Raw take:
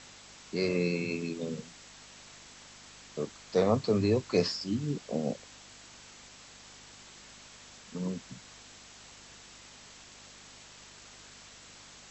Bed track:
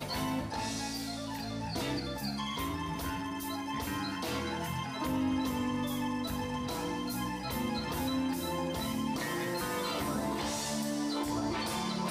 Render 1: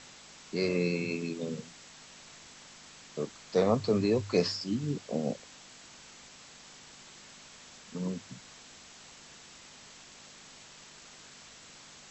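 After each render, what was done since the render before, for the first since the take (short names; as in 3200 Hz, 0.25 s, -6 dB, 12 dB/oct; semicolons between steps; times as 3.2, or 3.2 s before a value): de-hum 50 Hz, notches 2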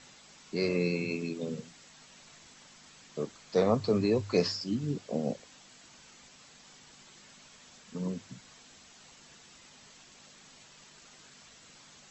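denoiser 6 dB, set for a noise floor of -53 dBFS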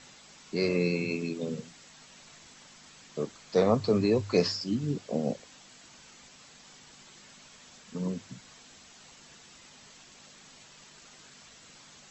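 gain +2 dB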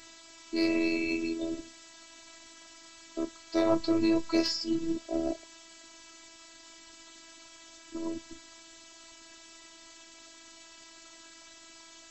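in parallel at -6.5 dB: hard clip -25 dBFS, distortion -8 dB; on the sum: robotiser 328 Hz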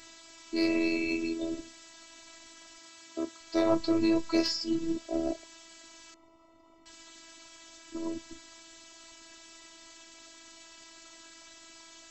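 2.78–3.41 HPF 130 Hz 6 dB/oct; 6.14–6.86 polynomial smoothing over 65 samples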